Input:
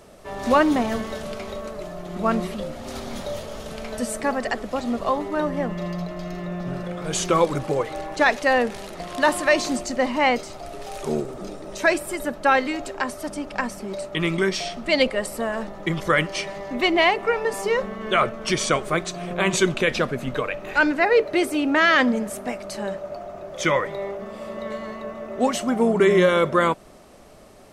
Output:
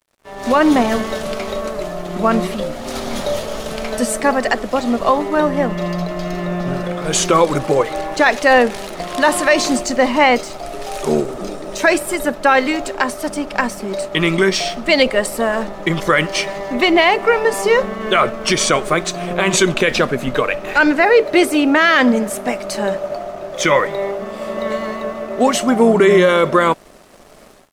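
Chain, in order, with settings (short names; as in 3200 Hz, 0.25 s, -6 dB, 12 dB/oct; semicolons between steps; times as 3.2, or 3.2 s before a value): bell 83 Hz -6.5 dB 1.8 oct; limiter -12 dBFS, peak gain reduction 5 dB; AGC gain up to 11 dB; crossover distortion -43 dBFS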